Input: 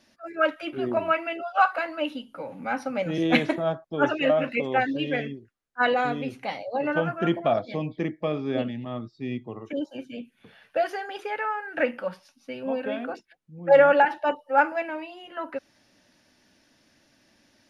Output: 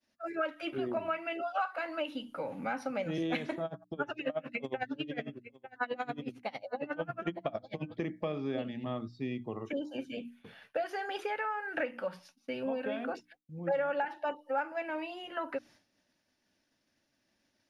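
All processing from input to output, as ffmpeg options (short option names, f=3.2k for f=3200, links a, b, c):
-filter_complex "[0:a]asettb=1/sr,asplit=3[a][b][c];[a]atrim=end=3.654[d];[b]atrim=start=3.65:end=7.97,asetpts=PTS-STARTPTS,afade=t=in:d=0.004:c=qsin,afade=t=out:st=4.316:d=0.004:c=qsin,aecho=1:1:896:0.0841,atrim=end_sample=190512,aeval=exprs='val(0)*pow(10,-28*(0.5-0.5*cos(2*PI*11*n/s))/20)':c=same[e];[c]atrim=start=7.966[f];[d][e]acrossfade=d=0.004:c1=hsin:c2=qsin[g];[g][f]acrossfade=d=0.004:c1=qsin:c2=hsin,acompressor=threshold=-32dB:ratio=4,agate=range=-33dB:threshold=-52dB:ratio=3:detection=peak,bandreject=f=60:t=h:w=6,bandreject=f=120:t=h:w=6,bandreject=f=180:t=h:w=6,bandreject=f=240:t=h:w=6,bandreject=f=300:t=h:w=6"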